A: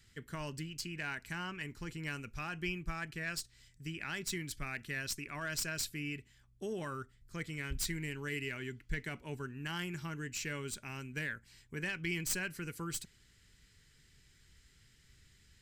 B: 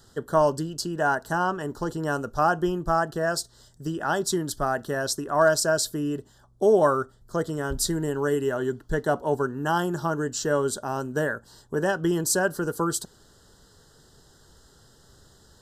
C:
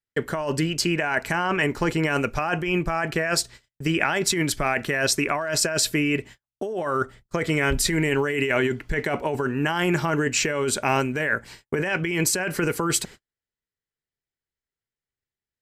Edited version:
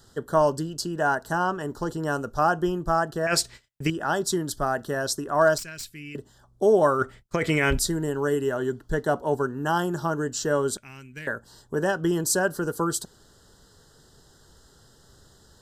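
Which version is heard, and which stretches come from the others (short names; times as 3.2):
B
3.27–3.9 from C
5.58–6.15 from A
6.99–7.79 from C
10.77–11.27 from A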